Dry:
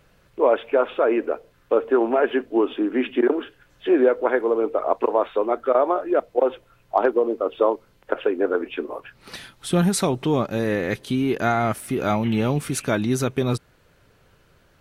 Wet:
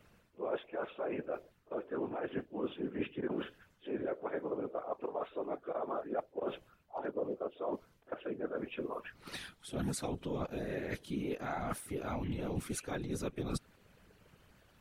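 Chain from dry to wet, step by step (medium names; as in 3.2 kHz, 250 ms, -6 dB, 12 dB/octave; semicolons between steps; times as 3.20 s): coarse spectral quantiser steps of 15 dB; reverse; compression 6:1, threshold -30 dBFS, peak gain reduction 16 dB; reverse; pre-echo 49 ms -24 dB; whisper effect; trim -5.5 dB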